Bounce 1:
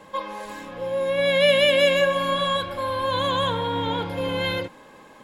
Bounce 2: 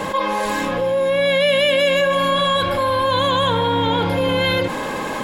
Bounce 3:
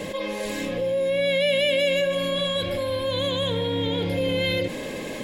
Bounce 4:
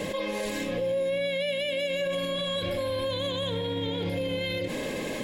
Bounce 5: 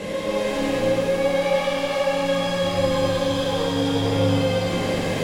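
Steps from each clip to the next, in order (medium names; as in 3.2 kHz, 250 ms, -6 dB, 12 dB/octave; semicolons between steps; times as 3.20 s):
level flattener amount 70%
high-order bell 1.1 kHz -13 dB 1.2 oct; trim -5 dB
peak limiter -22 dBFS, peak gain reduction 10 dB
one-bit delta coder 64 kbps, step -48.5 dBFS; pitch-shifted reverb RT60 3.7 s, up +7 st, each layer -8 dB, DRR -7 dB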